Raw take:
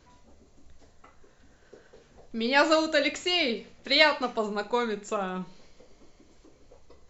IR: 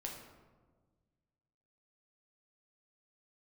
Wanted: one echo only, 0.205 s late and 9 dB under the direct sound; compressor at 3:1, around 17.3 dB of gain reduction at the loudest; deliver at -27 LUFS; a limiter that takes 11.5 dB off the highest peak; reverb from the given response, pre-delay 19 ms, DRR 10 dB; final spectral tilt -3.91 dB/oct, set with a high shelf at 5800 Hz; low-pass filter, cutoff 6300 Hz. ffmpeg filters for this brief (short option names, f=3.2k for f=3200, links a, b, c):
-filter_complex "[0:a]lowpass=6.3k,highshelf=f=5.8k:g=3,acompressor=threshold=-40dB:ratio=3,alimiter=level_in=11dB:limit=-24dB:level=0:latency=1,volume=-11dB,aecho=1:1:205:0.355,asplit=2[a][b];[1:a]atrim=start_sample=2205,adelay=19[c];[b][c]afir=irnorm=-1:irlink=0,volume=-8.5dB[d];[a][d]amix=inputs=2:normalize=0,volume=17.5dB"